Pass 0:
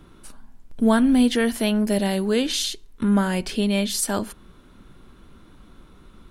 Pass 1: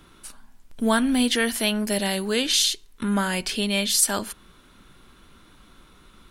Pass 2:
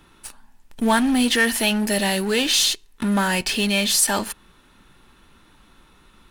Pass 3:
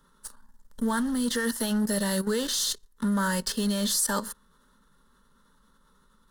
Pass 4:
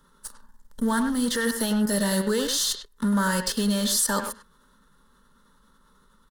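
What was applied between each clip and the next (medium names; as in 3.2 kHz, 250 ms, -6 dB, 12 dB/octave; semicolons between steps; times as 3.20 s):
tilt shelf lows -5.5 dB
small resonant body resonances 870/1800/2600 Hz, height 8 dB, ringing for 30 ms; in parallel at -11 dB: fuzz box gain 30 dB, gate -37 dBFS; on the sum: trim -1.5 dB
level held to a coarse grid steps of 12 dB; static phaser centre 490 Hz, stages 8
speakerphone echo 100 ms, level -7 dB; trim +2.5 dB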